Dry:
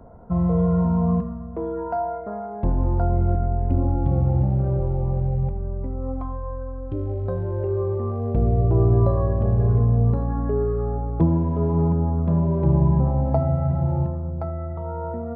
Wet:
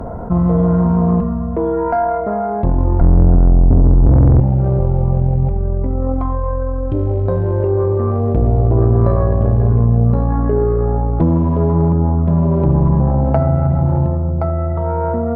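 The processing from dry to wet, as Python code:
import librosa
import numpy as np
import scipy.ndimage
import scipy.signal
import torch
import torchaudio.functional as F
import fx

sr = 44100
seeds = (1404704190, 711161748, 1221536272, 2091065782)

y = fx.tilt_eq(x, sr, slope=-4.5, at=(3.01, 4.4))
y = fx.tube_stage(y, sr, drive_db=11.0, bias=0.6)
y = fx.env_flatten(y, sr, amount_pct=50)
y = F.gain(torch.from_numpy(y), 4.0).numpy()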